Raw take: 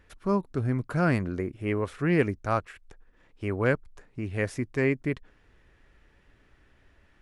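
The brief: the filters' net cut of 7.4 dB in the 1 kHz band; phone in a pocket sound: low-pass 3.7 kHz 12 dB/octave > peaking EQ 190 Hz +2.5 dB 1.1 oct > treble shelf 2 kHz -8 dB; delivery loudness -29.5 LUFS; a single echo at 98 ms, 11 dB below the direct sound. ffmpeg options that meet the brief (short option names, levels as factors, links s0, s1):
-af "lowpass=3700,equalizer=f=190:t=o:w=1.1:g=2.5,equalizer=f=1000:t=o:g=-8,highshelf=f=2000:g=-8,aecho=1:1:98:0.282,volume=0.891"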